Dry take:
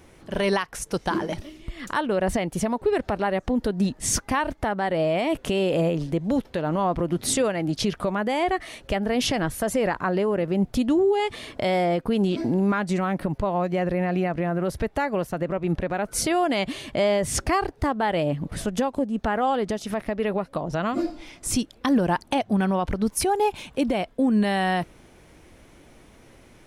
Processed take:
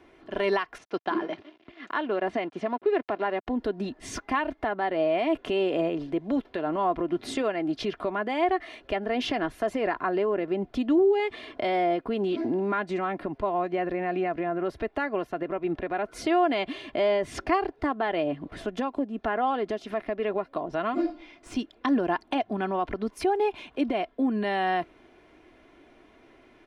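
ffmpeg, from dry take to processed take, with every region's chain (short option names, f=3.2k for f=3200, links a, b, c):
-filter_complex "[0:a]asettb=1/sr,asplit=3[a][b][c];[a]atrim=end=0.784[d];[b]atrim=start=0.78:end=3.47,asetpts=PTS-STARTPTS,afade=t=in:d=0.004:c=qsin,afade=t=out:st=2.686:d=0.004:c=qsin,aeval=exprs='sgn(val(0))*max(abs(val(0))-0.00668,0)':c=same,highpass=150,lowpass=4.8k[e];[c]atrim=start=3.466[f];[d][e]acrossfade=d=0.004:c1=hsin:c2=qsin[g];[g][f]acrossfade=d=0.004:c1=qsin:c2=hsin,asettb=1/sr,asplit=3[h][i][j];[h]atrim=end=21.124[k];[i]atrim=start=21.12:end=21.57,asetpts=PTS-STARTPTS,afade=t=in:d=0.004:c=qsin,afade=t=out:st=0.446:d=0.004:c=qsin,lowpass=9.3k,aeval=exprs='(tanh(7.94*val(0)+0.55)-tanh(0.55))/7.94':c=same[l];[j]atrim=start=21.566[m];[k][l]acrossfade=d=0.004:c1=hsin:c2=qsin[n];[n][m]acrossfade=d=0.004:c1=qsin:c2=hsin,acrossover=split=190 4000:gain=0.251 1 0.1[o][p][q];[o][p][q]amix=inputs=3:normalize=0,aecho=1:1:2.9:0.48,volume=-3dB"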